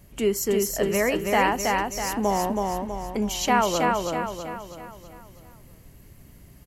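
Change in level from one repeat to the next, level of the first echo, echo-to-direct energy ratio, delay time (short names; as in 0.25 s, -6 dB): -6.5 dB, -3.0 dB, -2.0 dB, 0.324 s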